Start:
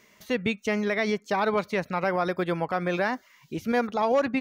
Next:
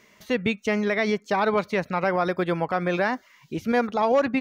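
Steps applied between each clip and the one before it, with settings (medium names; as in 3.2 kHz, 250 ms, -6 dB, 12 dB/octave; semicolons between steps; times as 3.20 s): treble shelf 7.3 kHz -5.5 dB; trim +2.5 dB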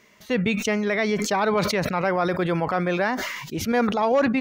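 decay stretcher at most 38 dB/s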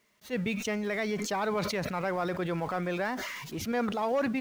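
jump at every zero crossing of -35.5 dBFS; gate with hold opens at -33 dBFS; attacks held to a fixed rise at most 360 dB/s; trim -9 dB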